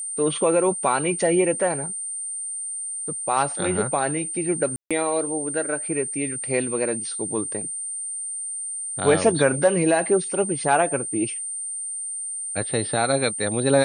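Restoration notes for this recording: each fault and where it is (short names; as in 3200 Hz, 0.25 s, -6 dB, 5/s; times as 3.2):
tone 8900 Hz -28 dBFS
4.76–4.91 gap 0.146 s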